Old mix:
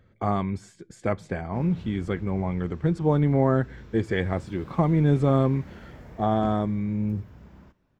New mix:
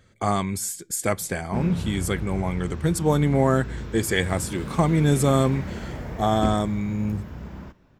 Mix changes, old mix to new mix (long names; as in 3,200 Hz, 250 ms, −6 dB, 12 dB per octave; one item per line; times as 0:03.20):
speech: remove head-to-tape spacing loss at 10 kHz 33 dB
background +11.5 dB